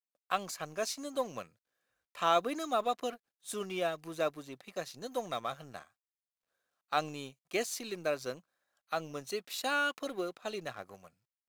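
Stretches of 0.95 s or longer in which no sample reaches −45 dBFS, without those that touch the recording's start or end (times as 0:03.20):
0:05.83–0:06.92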